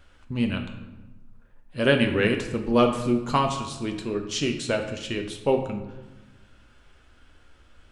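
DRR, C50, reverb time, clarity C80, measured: 4.0 dB, 8.0 dB, 1.2 s, 10.0 dB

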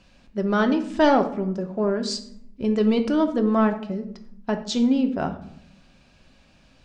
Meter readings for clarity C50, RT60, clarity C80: 11.0 dB, 0.70 s, 14.5 dB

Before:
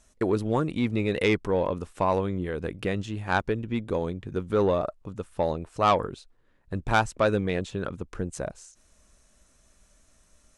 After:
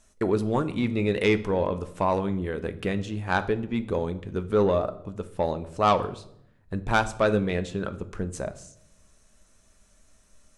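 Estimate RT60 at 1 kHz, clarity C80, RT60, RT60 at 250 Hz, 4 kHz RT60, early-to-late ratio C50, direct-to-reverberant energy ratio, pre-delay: 0.65 s, 19.0 dB, 0.70 s, 1.0 s, 0.55 s, 16.0 dB, 9.5 dB, 5 ms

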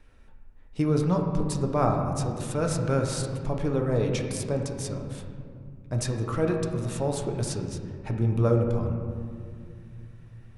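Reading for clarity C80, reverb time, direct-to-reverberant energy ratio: 6.0 dB, 2.3 s, 2.0 dB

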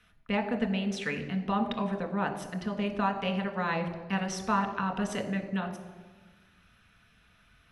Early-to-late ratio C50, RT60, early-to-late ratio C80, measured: 10.0 dB, 1.4 s, 11.5 dB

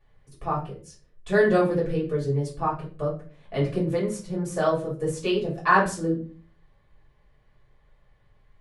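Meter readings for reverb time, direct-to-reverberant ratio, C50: 0.40 s, −7.5 dB, 8.0 dB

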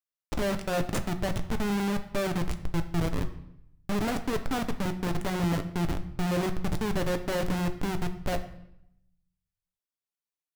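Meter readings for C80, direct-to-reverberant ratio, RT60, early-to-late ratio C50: 15.0 dB, 7.0 dB, 0.75 s, 12.5 dB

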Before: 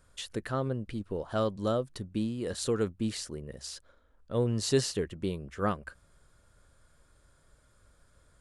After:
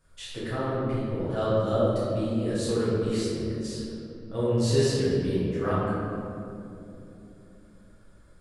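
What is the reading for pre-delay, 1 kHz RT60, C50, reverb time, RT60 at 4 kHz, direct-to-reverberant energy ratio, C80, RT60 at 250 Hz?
6 ms, 2.3 s, −3.5 dB, 2.9 s, 1.3 s, −11.5 dB, −1.0 dB, 4.3 s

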